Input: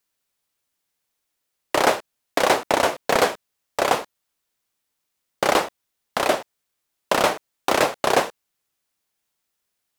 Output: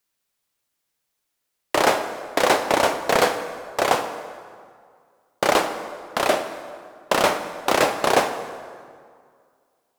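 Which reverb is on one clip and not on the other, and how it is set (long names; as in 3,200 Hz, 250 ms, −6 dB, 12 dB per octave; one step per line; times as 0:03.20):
dense smooth reverb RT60 2.1 s, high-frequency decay 0.65×, DRR 7.5 dB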